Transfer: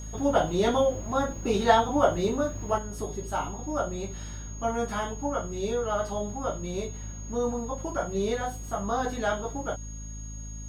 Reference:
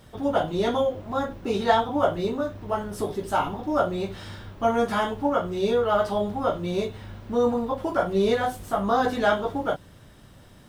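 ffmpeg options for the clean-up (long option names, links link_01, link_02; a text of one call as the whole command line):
ffmpeg -i in.wav -af "bandreject=frequency=53.4:width_type=h:width=4,bandreject=frequency=106.8:width_type=h:width=4,bandreject=frequency=160.2:width_type=h:width=4,bandreject=frequency=213.6:width_type=h:width=4,bandreject=frequency=267:width_type=h:width=4,bandreject=frequency=6600:width=30,asetnsamples=nb_out_samples=441:pad=0,asendcmd='2.78 volume volume 6.5dB',volume=0dB" out.wav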